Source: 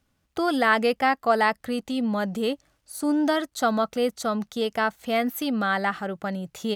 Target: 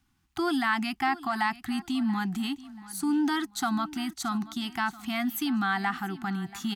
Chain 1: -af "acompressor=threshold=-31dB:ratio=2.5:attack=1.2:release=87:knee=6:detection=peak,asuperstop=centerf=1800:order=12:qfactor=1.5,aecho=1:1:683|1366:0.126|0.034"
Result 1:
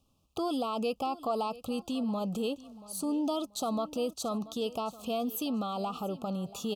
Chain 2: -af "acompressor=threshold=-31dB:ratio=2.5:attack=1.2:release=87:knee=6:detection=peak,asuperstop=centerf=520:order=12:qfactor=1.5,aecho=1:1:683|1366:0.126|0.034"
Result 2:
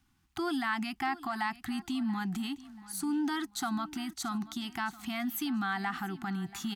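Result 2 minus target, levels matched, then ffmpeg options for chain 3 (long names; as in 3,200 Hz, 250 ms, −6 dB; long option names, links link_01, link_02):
downward compressor: peak gain reduction +5.5 dB
-af "acompressor=threshold=-21.5dB:ratio=2.5:attack=1.2:release=87:knee=6:detection=peak,asuperstop=centerf=520:order=12:qfactor=1.5,aecho=1:1:683|1366:0.126|0.034"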